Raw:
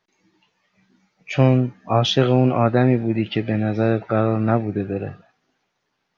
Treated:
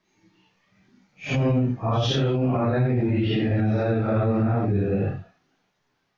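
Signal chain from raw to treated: phase randomisation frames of 200 ms; bass shelf 140 Hz +9 dB; peak limiter -15 dBFS, peak gain reduction 13.5 dB

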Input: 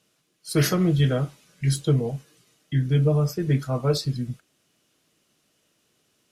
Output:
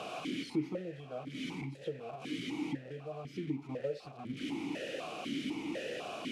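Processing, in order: one-bit delta coder 64 kbps, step -25 dBFS; bass shelf 470 Hz +8.5 dB; compression 6:1, threshold -24 dBFS, peak gain reduction 14.5 dB; stepped vowel filter 4 Hz; trim +3 dB

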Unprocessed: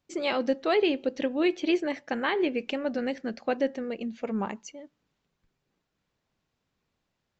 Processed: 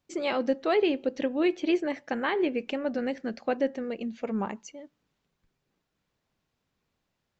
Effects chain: dynamic bell 4.3 kHz, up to -4 dB, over -45 dBFS, Q 0.71

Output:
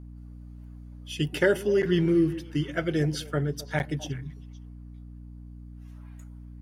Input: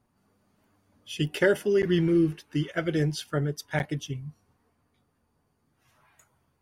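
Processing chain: repeats whose band climbs or falls 129 ms, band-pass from 250 Hz, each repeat 1.4 oct, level -11 dB; hum 60 Hz, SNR 14 dB

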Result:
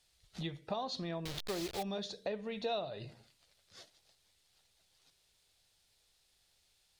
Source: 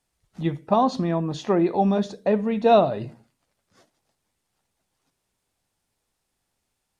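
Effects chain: 1.25–1.83 s: send-on-delta sampling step -26 dBFS; graphic EQ 125/250/1000/4000 Hz -3/-11/-6/+10 dB; compression 3:1, threshold -43 dBFS, peak gain reduction 20.5 dB; trim +2 dB

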